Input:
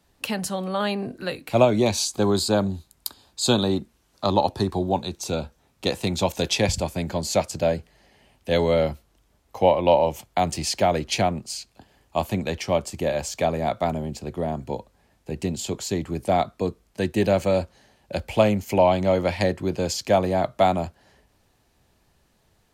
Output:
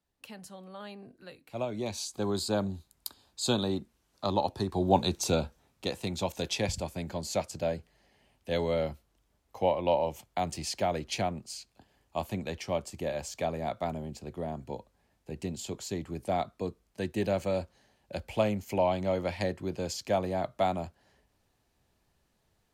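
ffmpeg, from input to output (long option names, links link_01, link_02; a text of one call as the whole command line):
ffmpeg -i in.wav -af "volume=2dB,afade=type=in:start_time=1.5:duration=1.1:silence=0.281838,afade=type=in:start_time=4.71:duration=0.33:silence=0.316228,afade=type=out:start_time=5.04:duration=0.84:silence=0.281838" out.wav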